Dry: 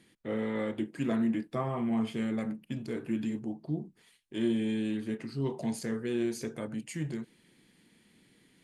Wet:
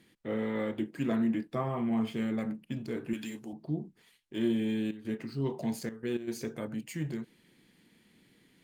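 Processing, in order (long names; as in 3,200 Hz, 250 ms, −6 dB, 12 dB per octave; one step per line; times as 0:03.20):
0:03.13–0:03.53: spectral tilt +3.5 dB per octave
0:04.86–0:06.27: gate pattern "xxxxxx.x." 107 BPM −12 dB
linearly interpolated sample-rate reduction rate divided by 2×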